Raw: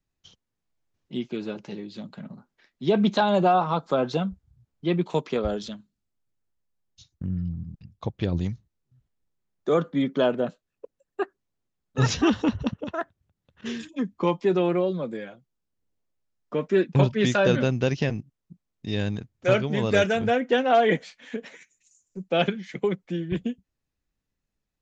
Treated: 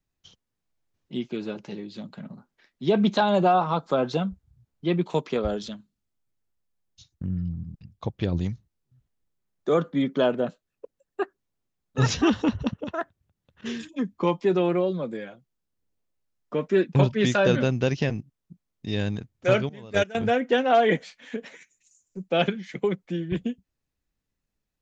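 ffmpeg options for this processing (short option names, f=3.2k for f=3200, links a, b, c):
-filter_complex "[0:a]asettb=1/sr,asplit=3[a][b][c];[a]atrim=end=19.694[d];[b]atrim=start=19.69:end=20.15,asetpts=PTS-STARTPTS,afade=t=in:d=0.004:c=qsin,afade=t=out:st=0.456:d=0.004:c=qsin,agate=range=-18dB:threshold=-19dB:ratio=16:release=100:detection=peak[e];[c]atrim=start=20.146[f];[d][e]acrossfade=d=0.004:c1=hsin:c2=qsin[g];[g][f]acrossfade=d=0.004:c1=qsin:c2=hsin"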